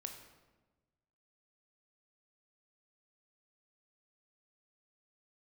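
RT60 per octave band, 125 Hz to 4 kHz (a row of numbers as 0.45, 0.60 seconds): 1.7, 1.5, 1.3, 1.1, 0.95, 0.80 seconds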